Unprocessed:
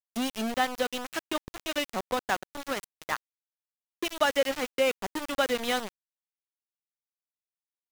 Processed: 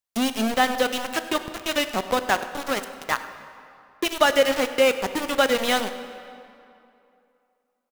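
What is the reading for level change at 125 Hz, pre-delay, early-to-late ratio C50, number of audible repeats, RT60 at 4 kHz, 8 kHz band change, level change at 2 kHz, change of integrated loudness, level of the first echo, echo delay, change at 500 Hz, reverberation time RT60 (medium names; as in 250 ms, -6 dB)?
+7.0 dB, 14 ms, 10.5 dB, 1, 1.8 s, +7.0 dB, +7.0 dB, +7.0 dB, -19.0 dB, 99 ms, +7.0 dB, 2.7 s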